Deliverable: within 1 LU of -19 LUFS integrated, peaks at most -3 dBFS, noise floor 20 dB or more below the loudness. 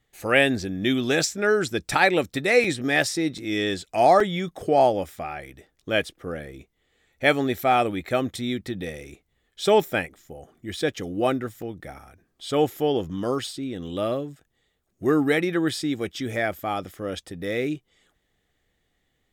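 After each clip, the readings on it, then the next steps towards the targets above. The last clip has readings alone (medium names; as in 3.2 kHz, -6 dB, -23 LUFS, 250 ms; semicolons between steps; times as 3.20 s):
dropouts 4; longest dropout 3.6 ms; loudness -24.0 LUFS; peak level -3.5 dBFS; loudness target -19.0 LUFS
-> interpolate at 2.64/3.38/4.20/11.62 s, 3.6 ms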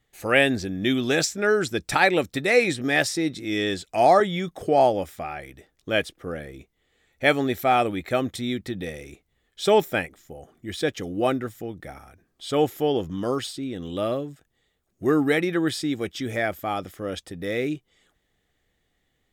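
dropouts 0; loudness -24.0 LUFS; peak level -3.5 dBFS; loudness target -19.0 LUFS
-> trim +5 dB; peak limiter -3 dBFS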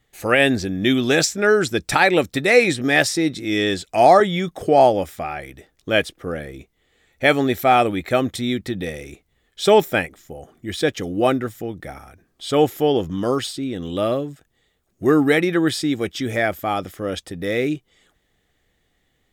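loudness -19.5 LUFS; peak level -3.0 dBFS; noise floor -68 dBFS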